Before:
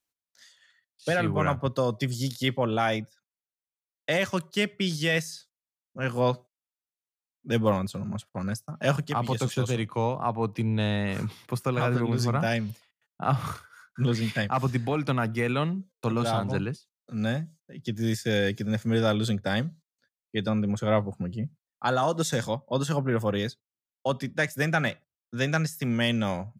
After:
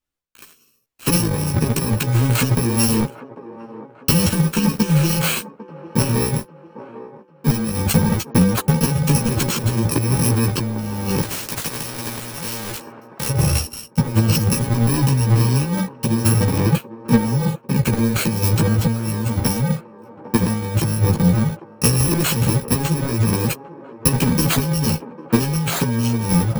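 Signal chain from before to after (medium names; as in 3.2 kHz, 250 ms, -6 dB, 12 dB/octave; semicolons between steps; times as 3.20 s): bit-reversed sample order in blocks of 64 samples; tilt EQ -2 dB/octave; compressor with a negative ratio -29 dBFS, ratio -0.5; waveshaping leveller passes 3; transient shaper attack +7 dB, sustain +11 dB; chorus voices 4, 0.22 Hz, delay 15 ms, depth 3.2 ms; feedback echo behind a band-pass 799 ms, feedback 46%, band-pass 610 Hz, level -11 dB; 11.22–13.29 s: spectrum-flattening compressor 2:1; trim +5 dB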